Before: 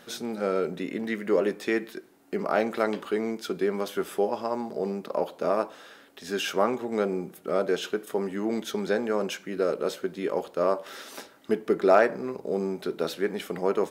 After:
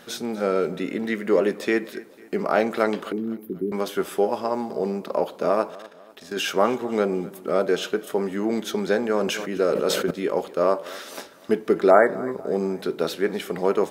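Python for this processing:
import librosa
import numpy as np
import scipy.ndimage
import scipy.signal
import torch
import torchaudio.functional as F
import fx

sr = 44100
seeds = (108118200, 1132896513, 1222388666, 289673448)

y = fx.cheby2_bandstop(x, sr, low_hz=660.0, high_hz=7600.0, order=4, stop_db=40, at=(3.12, 3.72))
y = fx.level_steps(y, sr, step_db=16, at=(5.7, 6.37))
y = fx.spec_repair(y, sr, seeds[0], start_s=11.93, length_s=0.46, low_hz=2300.0, high_hz=7000.0, source='after')
y = fx.echo_feedback(y, sr, ms=249, feedback_pct=44, wet_db=-20.0)
y = fx.sustainer(y, sr, db_per_s=38.0, at=(9.15, 10.11))
y = y * 10.0 ** (4.0 / 20.0)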